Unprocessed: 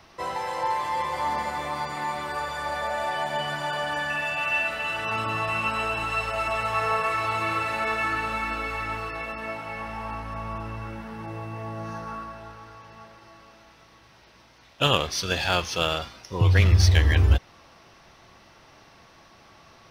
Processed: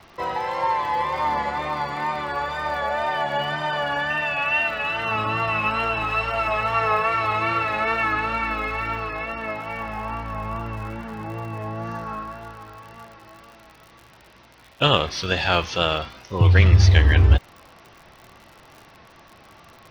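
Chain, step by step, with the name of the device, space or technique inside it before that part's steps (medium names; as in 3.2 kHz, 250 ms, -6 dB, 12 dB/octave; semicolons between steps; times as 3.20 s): lo-fi chain (low-pass 4 kHz 12 dB/octave; wow and flutter; crackle 80 per s -40 dBFS); trim +4 dB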